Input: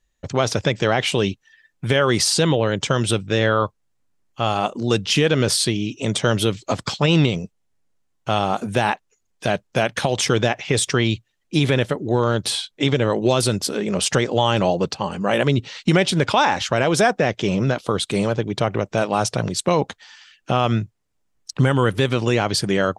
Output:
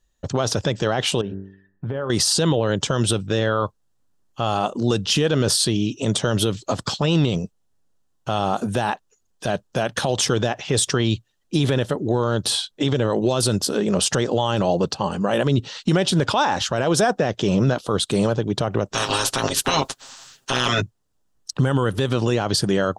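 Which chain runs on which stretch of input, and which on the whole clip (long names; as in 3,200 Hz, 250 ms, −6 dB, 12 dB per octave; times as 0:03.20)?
0:01.21–0:02.10: low-pass filter 1,300 Hz + hum removal 48.38 Hz, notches 39 + downward compressor 3 to 1, threshold −28 dBFS
0:18.93–0:20.80: ceiling on every frequency bin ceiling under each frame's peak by 28 dB + noise gate with hold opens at −41 dBFS, closes at −49 dBFS + comb filter 7.5 ms, depth 77%
whole clip: parametric band 2,200 Hz −10 dB 0.43 octaves; brickwall limiter −12 dBFS; level +2.5 dB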